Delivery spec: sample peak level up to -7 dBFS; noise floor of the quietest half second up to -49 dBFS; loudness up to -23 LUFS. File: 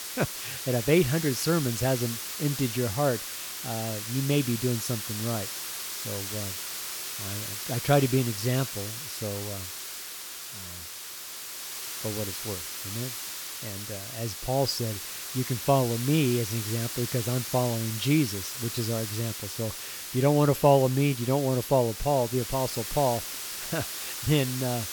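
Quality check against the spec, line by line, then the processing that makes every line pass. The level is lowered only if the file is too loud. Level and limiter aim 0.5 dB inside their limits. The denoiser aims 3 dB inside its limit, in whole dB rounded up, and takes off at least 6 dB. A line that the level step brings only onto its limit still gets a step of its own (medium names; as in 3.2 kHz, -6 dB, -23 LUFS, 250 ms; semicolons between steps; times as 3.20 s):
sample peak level -8.5 dBFS: pass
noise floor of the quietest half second -40 dBFS: fail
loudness -28.0 LUFS: pass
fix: noise reduction 12 dB, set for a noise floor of -40 dBFS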